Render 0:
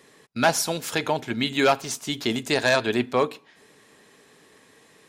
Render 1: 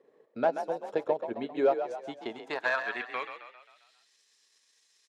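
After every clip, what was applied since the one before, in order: transient shaper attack +5 dB, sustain -11 dB; band-pass sweep 500 Hz -> 5.5 kHz, 1.83–4.16 s; frequency-shifting echo 133 ms, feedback 51%, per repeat +41 Hz, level -9 dB; trim -2 dB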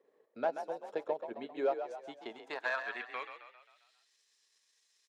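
high-pass 310 Hz 6 dB/octave; trim -5.5 dB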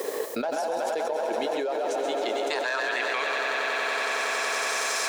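tone controls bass -10 dB, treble +14 dB; on a send: echo with a slow build-up 93 ms, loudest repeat 5, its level -14.5 dB; on the sum: level flattener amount 100%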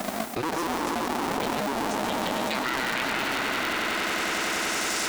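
cycle switcher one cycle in 2, inverted

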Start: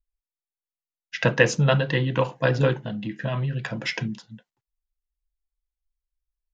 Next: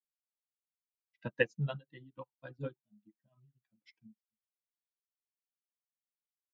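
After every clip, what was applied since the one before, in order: expander on every frequency bin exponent 2; peaking EQ 240 Hz +5 dB 1.1 oct; upward expansion 2.5:1, over -38 dBFS; trim -9 dB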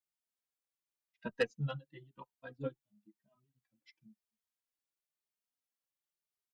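peaking EQ 110 Hz -5 dB 0.45 oct; saturation -22.5 dBFS, distortion -11 dB; endless flanger 2.9 ms +0.97 Hz; trim +3 dB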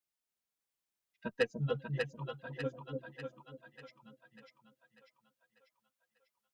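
two-band feedback delay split 660 Hz, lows 294 ms, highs 594 ms, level -3 dB; trim +1 dB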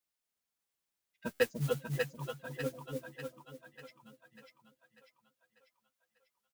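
modulation noise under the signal 17 dB; doubling 12 ms -12 dB; buffer glitch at 1.33 s, samples 512, times 5; trim +1 dB

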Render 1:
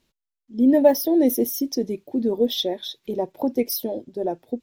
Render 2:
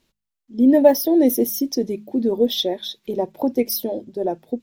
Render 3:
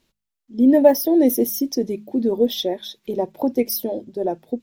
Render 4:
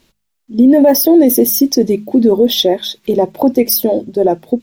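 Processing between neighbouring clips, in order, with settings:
de-hum 52.69 Hz, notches 4; trim +2.5 dB
dynamic bell 3.9 kHz, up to -5 dB, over -39 dBFS, Q 2.2
loudness maximiser +13 dB; trim -1 dB

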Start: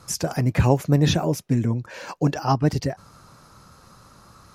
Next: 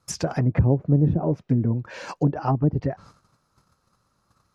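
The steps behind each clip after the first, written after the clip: low-pass that closes with the level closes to 430 Hz, closed at -15.5 dBFS; gate -46 dBFS, range -19 dB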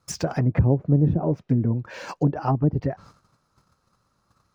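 median filter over 3 samples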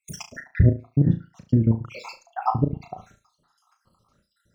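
random holes in the spectrogram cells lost 70%; flutter echo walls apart 6.1 m, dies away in 0.27 s; trim +4.5 dB

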